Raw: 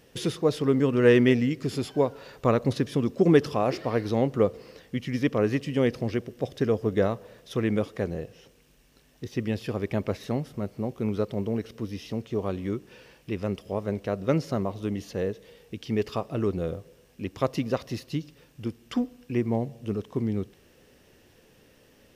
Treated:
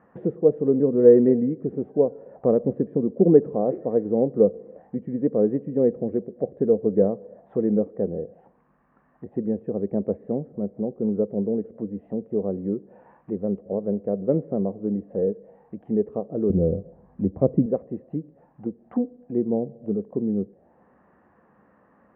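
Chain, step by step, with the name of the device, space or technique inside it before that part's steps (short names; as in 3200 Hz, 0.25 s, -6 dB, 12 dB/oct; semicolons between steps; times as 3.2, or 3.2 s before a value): envelope filter bass rig (envelope low-pass 460–1200 Hz down, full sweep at -29.5 dBFS; speaker cabinet 79–2300 Hz, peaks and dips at 110 Hz -8 dB, 200 Hz +8 dB, 420 Hz -5 dB, 740 Hz +5 dB, 1800 Hz +6 dB); 16.5–17.66 RIAA curve playback; gain -2.5 dB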